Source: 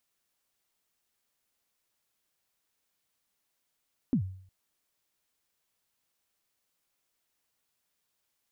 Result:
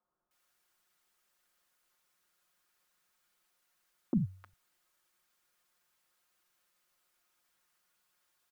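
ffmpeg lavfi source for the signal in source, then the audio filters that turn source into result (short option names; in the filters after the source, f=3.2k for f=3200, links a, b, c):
-f lavfi -i "aevalsrc='0.1*pow(10,-3*t/0.57)*sin(2*PI*(290*0.09/log(94/290)*(exp(log(94/290)*min(t,0.09)/0.09)-1)+94*max(t-0.09,0)))':d=0.36:s=44100"
-filter_complex "[0:a]equalizer=f=1.3k:t=o:w=0.95:g=10,aecho=1:1:5.6:0.71,acrossover=split=160|1100[a][b][c];[a]adelay=40[d];[c]adelay=310[e];[d][b][e]amix=inputs=3:normalize=0"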